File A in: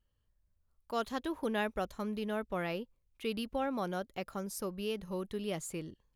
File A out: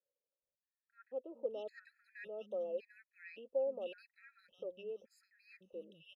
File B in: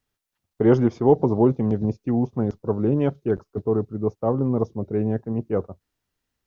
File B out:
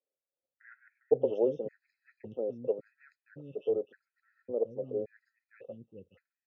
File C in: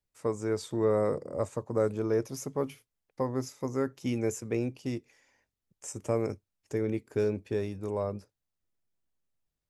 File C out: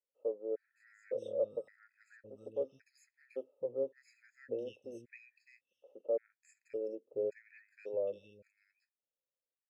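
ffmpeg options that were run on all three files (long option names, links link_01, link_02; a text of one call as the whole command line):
ffmpeg -i in.wav -filter_complex "[0:a]asplit=3[link_01][link_02][link_03];[link_01]bandpass=frequency=530:width_type=q:width=8,volume=0dB[link_04];[link_02]bandpass=frequency=1840:width_type=q:width=8,volume=-6dB[link_05];[link_03]bandpass=frequency=2480:width_type=q:width=8,volume=-9dB[link_06];[link_04][link_05][link_06]amix=inputs=3:normalize=0,acrossover=split=230|1700[link_07][link_08][link_09];[link_07]adelay=420[link_10];[link_09]adelay=610[link_11];[link_10][link_08][link_11]amix=inputs=3:normalize=0,afftfilt=real='re*gt(sin(2*PI*0.89*pts/sr)*(1-2*mod(floor(b*sr/1024/1300),2)),0)':imag='im*gt(sin(2*PI*0.89*pts/sr)*(1-2*mod(floor(b*sr/1024/1300),2)),0)':win_size=1024:overlap=0.75,volume=4dB" out.wav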